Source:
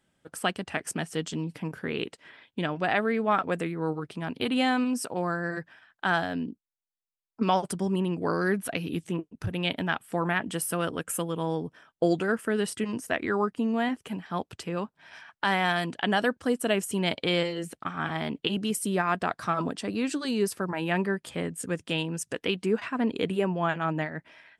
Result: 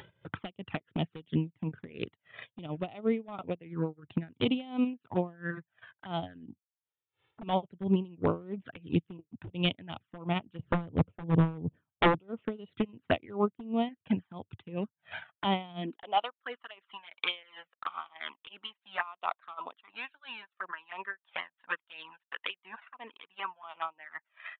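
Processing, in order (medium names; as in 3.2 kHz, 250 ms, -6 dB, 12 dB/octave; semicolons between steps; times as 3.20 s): 10.59–12.18 s: tilt EQ -4.5 dB/octave; upward compressor, threshold -29 dBFS; transient shaper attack +8 dB, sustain -11 dB; high-pass sweep 100 Hz -> 1.1 kHz, 15.63–16.24 s; touch-sensitive flanger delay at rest 2.3 ms, full sweep at -21 dBFS; wavefolder -15 dBFS; resampled via 8 kHz; logarithmic tremolo 2.9 Hz, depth 22 dB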